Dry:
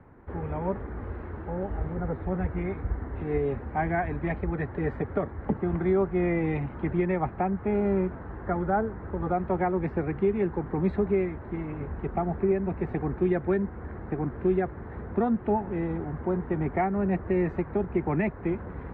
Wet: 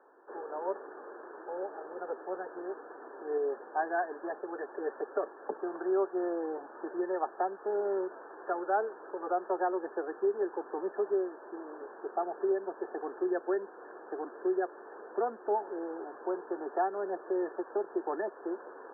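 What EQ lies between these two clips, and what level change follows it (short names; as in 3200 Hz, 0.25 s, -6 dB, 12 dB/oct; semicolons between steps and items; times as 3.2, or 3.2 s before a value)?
steep high-pass 360 Hz 36 dB/oct; brick-wall FIR low-pass 1800 Hz; -2.5 dB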